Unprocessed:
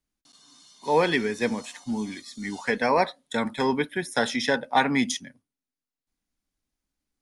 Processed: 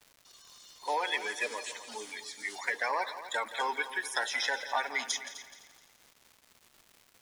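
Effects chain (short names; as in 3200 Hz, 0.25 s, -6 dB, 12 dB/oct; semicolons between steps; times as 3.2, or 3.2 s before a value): bin magnitudes rounded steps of 30 dB; Bessel high-pass 730 Hz, order 4; compressor 5:1, threshold -28 dBFS, peak gain reduction 9 dB; crackle 390/s -46 dBFS; on a send: multi-head echo 85 ms, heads second and third, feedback 40%, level -14 dB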